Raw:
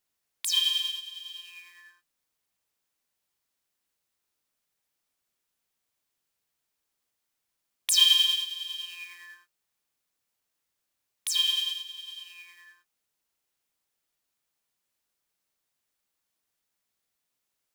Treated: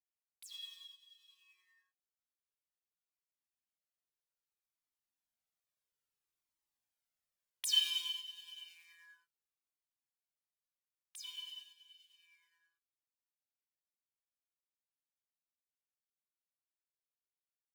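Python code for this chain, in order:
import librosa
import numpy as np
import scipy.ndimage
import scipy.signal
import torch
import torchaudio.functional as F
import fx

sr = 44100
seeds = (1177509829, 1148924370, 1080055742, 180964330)

y = fx.doppler_pass(x, sr, speed_mps=16, closest_m=23.0, pass_at_s=6.67)
y = fx.comb_cascade(y, sr, direction='falling', hz=0.61)
y = y * librosa.db_to_amplitude(-6.5)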